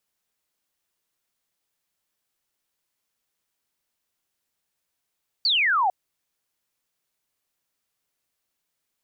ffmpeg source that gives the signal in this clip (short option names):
-f lavfi -i "aevalsrc='0.126*clip(t/0.002,0,1)*clip((0.45-t)/0.002,0,1)*sin(2*PI*4700*0.45/log(710/4700)*(exp(log(710/4700)*t/0.45)-1))':d=0.45:s=44100"